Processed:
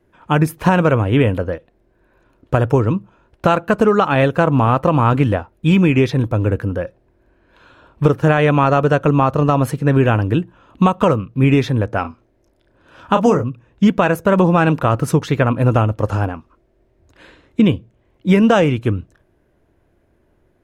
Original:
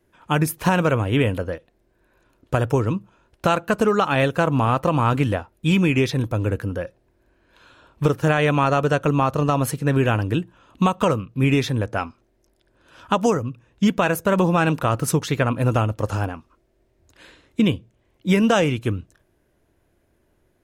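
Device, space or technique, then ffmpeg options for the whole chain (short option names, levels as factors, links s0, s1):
through cloth: -filter_complex "[0:a]asettb=1/sr,asplit=3[s0][s1][s2];[s0]atrim=end=12.014[s3];[s1]atrim=start=12.01:end=13.44,asetpts=PTS-STARTPTS,afade=t=in:d=0.004:c=qsin,afade=t=out:st=1.426:d=0.004:c=qsin,asplit=2[s4][s5];[s5]adelay=33,volume=0.398[s6];[s4][s6]amix=inputs=2:normalize=0,atrim=end_sample=63063[s7];[s2]atrim=start=13.436[s8];[s3][s7]acrossfade=d=0.004:c1=hsin:c2=qsin[s9];[s9][s8]acrossfade=d=0.004:c1=qsin:c2=hsin,highshelf=f=3400:g=-11.5,volume=1.88"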